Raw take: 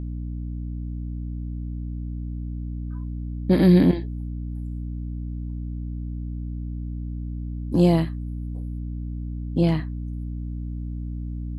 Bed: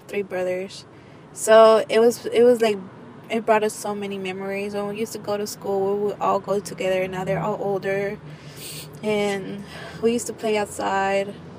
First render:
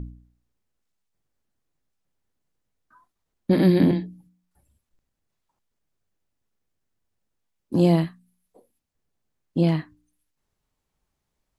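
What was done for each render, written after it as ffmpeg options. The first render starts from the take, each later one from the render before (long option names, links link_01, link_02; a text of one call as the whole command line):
ffmpeg -i in.wav -af "bandreject=frequency=60:width_type=h:width=4,bandreject=frequency=120:width_type=h:width=4,bandreject=frequency=180:width_type=h:width=4,bandreject=frequency=240:width_type=h:width=4,bandreject=frequency=300:width_type=h:width=4" out.wav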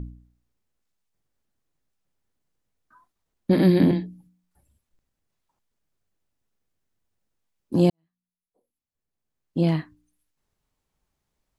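ffmpeg -i in.wav -filter_complex "[0:a]asplit=2[link_01][link_02];[link_01]atrim=end=7.9,asetpts=PTS-STARTPTS,afade=type=out:start_time=7.896:duration=0.004:curve=hsin[link_03];[link_02]atrim=start=7.9,asetpts=PTS-STARTPTS,afade=type=in:duration=1.87:curve=qua[link_04];[link_03][link_04]concat=n=2:v=0:a=1" out.wav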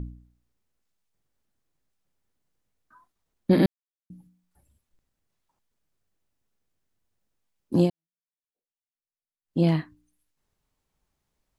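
ffmpeg -i in.wav -filter_complex "[0:a]asplit=5[link_01][link_02][link_03][link_04][link_05];[link_01]atrim=end=3.66,asetpts=PTS-STARTPTS,afade=type=out:start_time=3.656:duration=0.004:curve=hsin[link_06];[link_02]atrim=start=3.66:end=4.1,asetpts=PTS-STARTPTS,volume=0[link_07];[link_03]atrim=start=4.1:end=7.93,asetpts=PTS-STARTPTS,afade=type=in:duration=0.004:curve=hsin,afade=type=out:start_time=3.7:duration=0.13:silence=0.0668344[link_08];[link_04]atrim=start=7.93:end=9.44,asetpts=PTS-STARTPTS,volume=-23.5dB[link_09];[link_05]atrim=start=9.44,asetpts=PTS-STARTPTS,afade=type=in:duration=0.13:silence=0.0668344[link_10];[link_06][link_07][link_08][link_09][link_10]concat=n=5:v=0:a=1" out.wav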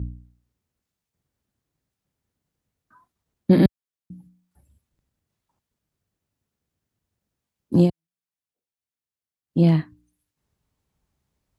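ffmpeg -i in.wav -af "highpass=61,lowshelf=frequency=210:gain=9.5" out.wav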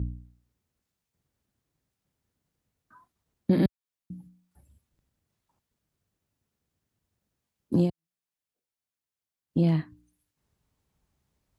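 ffmpeg -i in.wav -af "acompressor=threshold=-25dB:ratio=2" out.wav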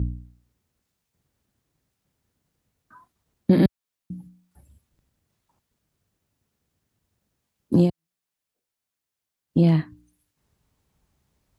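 ffmpeg -i in.wav -af "volume=5.5dB" out.wav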